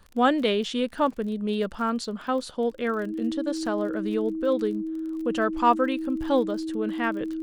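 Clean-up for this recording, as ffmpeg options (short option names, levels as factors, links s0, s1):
-af "adeclick=t=4,bandreject=f=320:w=30"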